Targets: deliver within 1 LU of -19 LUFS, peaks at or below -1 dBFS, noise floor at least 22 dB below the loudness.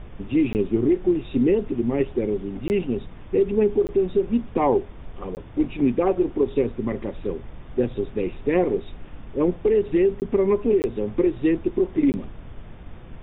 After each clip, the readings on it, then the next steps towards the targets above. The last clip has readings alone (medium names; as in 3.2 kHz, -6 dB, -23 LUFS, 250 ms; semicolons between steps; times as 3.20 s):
dropouts 7; longest dropout 19 ms; noise floor -41 dBFS; noise floor target -45 dBFS; loudness -23.0 LUFS; peak level -8.0 dBFS; loudness target -19.0 LUFS
-> interpolate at 0.53/2.68/3.87/5.35/10.20/10.82/12.12 s, 19 ms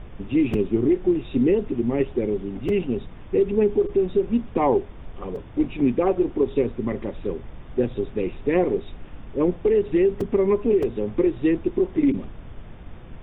dropouts 0; noise floor -40 dBFS; noise floor target -45 dBFS
-> noise print and reduce 6 dB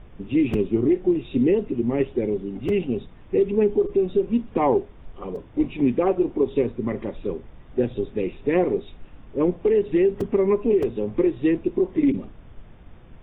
noise floor -46 dBFS; loudness -23.0 LUFS; peak level -8.5 dBFS; loudness target -19.0 LUFS
-> trim +4 dB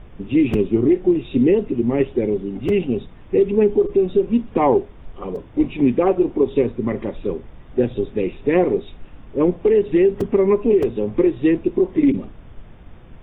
loudness -19.0 LUFS; peak level -4.5 dBFS; noise floor -42 dBFS